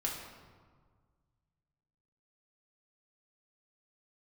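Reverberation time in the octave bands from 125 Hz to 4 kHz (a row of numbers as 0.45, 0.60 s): 2.6, 2.0, 1.7, 1.7, 1.2, 0.95 s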